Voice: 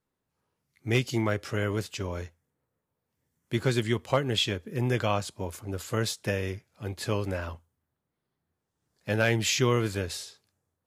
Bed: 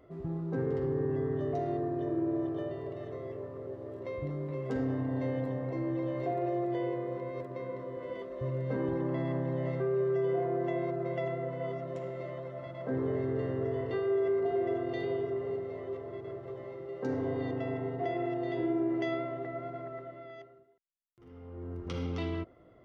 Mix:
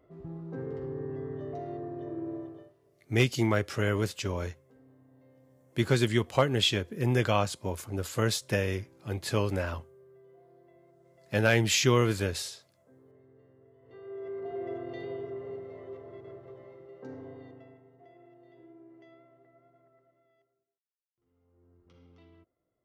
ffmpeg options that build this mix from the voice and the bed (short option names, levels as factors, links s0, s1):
-filter_complex "[0:a]adelay=2250,volume=1.12[s0];[1:a]volume=7.08,afade=t=out:st=2.32:d=0.41:silence=0.0794328,afade=t=in:st=13.81:d=0.89:silence=0.0749894,afade=t=out:st=16.28:d=1.55:silence=0.11885[s1];[s0][s1]amix=inputs=2:normalize=0"